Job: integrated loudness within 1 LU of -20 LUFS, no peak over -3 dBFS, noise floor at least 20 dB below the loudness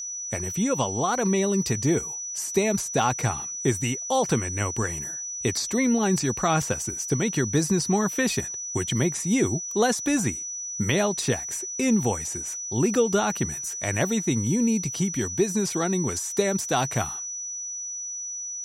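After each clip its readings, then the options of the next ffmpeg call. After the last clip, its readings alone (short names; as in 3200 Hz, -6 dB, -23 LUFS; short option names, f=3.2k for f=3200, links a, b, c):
steady tone 5900 Hz; tone level -31 dBFS; loudness -25.0 LUFS; peak -9.0 dBFS; loudness target -20.0 LUFS
-> -af "bandreject=f=5.9k:w=30"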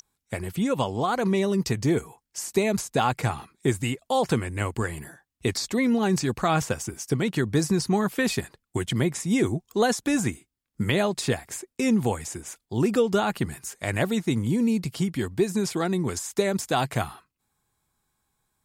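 steady tone none; loudness -26.0 LUFS; peak -9.5 dBFS; loudness target -20.0 LUFS
-> -af "volume=6dB"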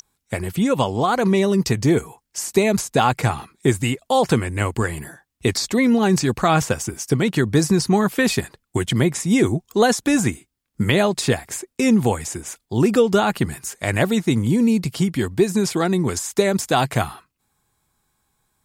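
loudness -20.0 LUFS; peak -3.5 dBFS; noise floor -76 dBFS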